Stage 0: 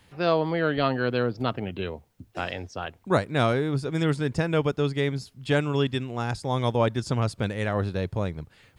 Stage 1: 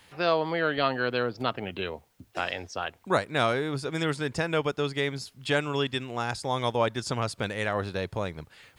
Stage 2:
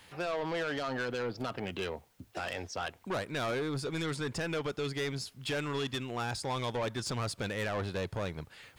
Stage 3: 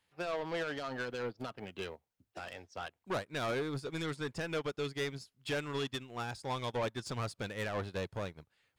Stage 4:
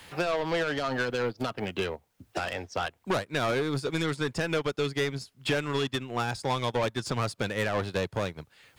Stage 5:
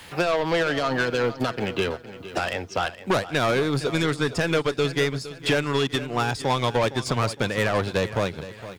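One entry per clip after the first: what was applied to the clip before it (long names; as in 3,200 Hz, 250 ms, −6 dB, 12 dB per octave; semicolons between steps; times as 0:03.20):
low-shelf EQ 380 Hz −11 dB; in parallel at −2.5 dB: downward compressor, threshold −35 dBFS, peak gain reduction 14.5 dB
brickwall limiter −17.5 dBFS, peak gain reduction 7 dB; soft clipping −29 dBFS, distortion −9 dB
expander for the loud parts 2.5 to 1, over −46 dBFS
multiband upward and downward compressor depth 70%; level +8 dB
repeating echo 462 ms, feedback 41%, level −14.5 dB; level +5.5 dB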